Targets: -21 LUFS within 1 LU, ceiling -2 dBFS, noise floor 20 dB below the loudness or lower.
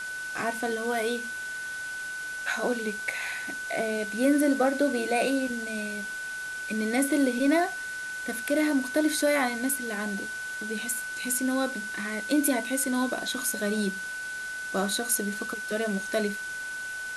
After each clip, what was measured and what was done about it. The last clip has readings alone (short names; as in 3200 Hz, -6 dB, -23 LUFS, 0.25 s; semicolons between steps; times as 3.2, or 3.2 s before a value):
steady tone 1500 Hz; tone level -33 dBFS; noise floor -36 dBFS; noise floor target -49 dBFS; loudness -28.5 LUFS; peak -8.0 dBFS; loudness target -21.0 LUFS
-> notch 1500 Hz, Q 30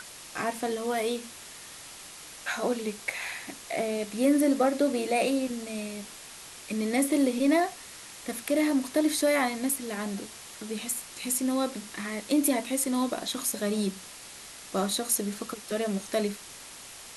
steady tone none; noise floor -46 dBFS; noise floor target -49 dBFS
-> denoiser 6 dB, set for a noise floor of -46 dBFS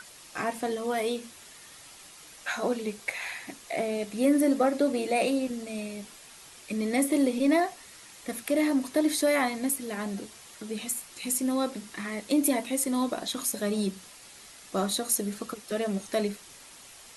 noise floor -50 dBFS; loudness -28.5 LUFS; peak -8.5 dBFS; loudness target -21.0 LUFS
-> gain +7.5 dB; limiter -2 dBFS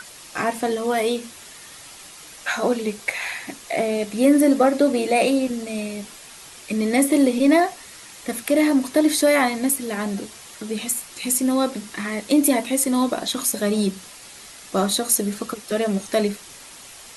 loudness -21.0 LUFS; peak -2.0 dBFS; noise floor -43 dBFS